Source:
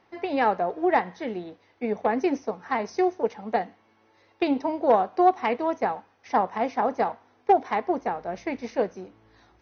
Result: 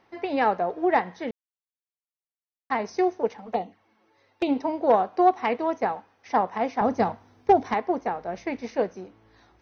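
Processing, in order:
0:01.31–0:02.70: silence
0:03.37–0:04.49: flanger swept by the level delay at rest 8.6 ms, full sweep at −25.5 dBFS
0:06.81–0:07.74: bass and treble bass +14 dB, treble +7 dB

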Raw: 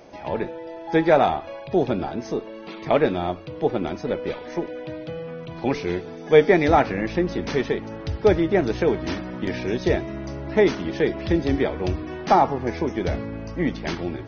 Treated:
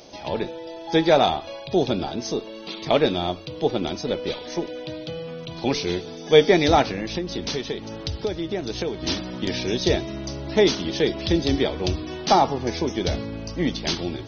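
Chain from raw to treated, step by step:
high shelf with overshoot 2,700 Hz +10 dB, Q 1.5
0:06.82–0:09.03: downward compressor 6 to 1, threshold −24 dBFS, peak gain reduction 12 dB

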